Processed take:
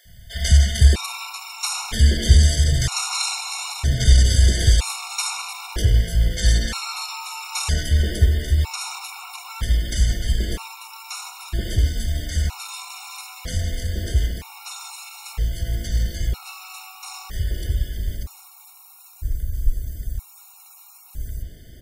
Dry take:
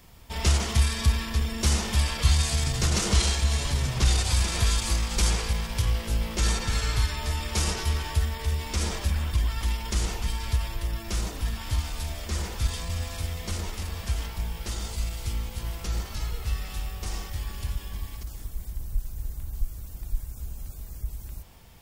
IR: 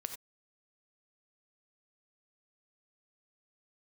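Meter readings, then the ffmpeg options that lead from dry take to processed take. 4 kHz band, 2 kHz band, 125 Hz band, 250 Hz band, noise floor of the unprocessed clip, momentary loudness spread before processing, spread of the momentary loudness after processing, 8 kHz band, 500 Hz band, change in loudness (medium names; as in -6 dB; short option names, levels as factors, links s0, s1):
+4.0 dB, +3.5 dB, +6.5 dB, +2.5 dB, -42 dBFS, 14 LU, 18 LU, +3.5 dB, +1.5 dB, +6.5 dB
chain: -filter_complex "[0:a]acrossover=split=190|670[s0][s1][s2];[s0]adelay=50[s3];[s1]adelay=480[s4];[s3][s4][s2]amix=inputs=3:normalize=0,asplit=2[s5][s6];[1:a]atrim=start_sample=2205,lowshelf=f=370:g=7.5[s7];[s6][s7]afir=irnorm=-1:irlink=0,volume=0.473[s8];[s5][s8]amix=inputs=2:normalize=0,afftfilt=real='re*gt(sin(2*PI*0.52*pts/sr)*(1-2*mod(floor(b*sr/1024/730),2)),0)':imag='im*gt(sin(2*PI*0.52*pts/sr)*(1-2*mod(floor(b*sr/1024/730),2)),0)':win_size=1024:overlap=0.75,volume=1.58"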